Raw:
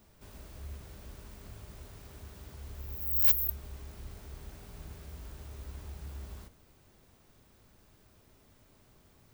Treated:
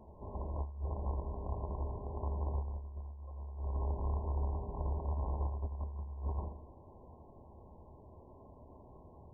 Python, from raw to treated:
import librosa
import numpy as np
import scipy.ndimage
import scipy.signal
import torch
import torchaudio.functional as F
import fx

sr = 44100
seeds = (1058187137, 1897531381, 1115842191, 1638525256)

y = fx.rattle_buzz(x, sr, strikes_db=-44.0, level_db=-25.0)
y = fx.brickwall_lowpass(y, sr, high_hz=1100.0)
y = fx.peak_eq(y, sr, hz=71.0, db=10.5, octaves=0.48)
y = fx.echo_feedback(y, sr, ms=84, feedback_pct=33, wet_db=-8.0)
y = fx.over_compress(y, sr, threshold_db=-35.0, ratio=-0.5)
y = fx.low_shelf(y, sr, hz=300.0, db=-10.0)
y = y * librosa.db_to_amplitude(9.0)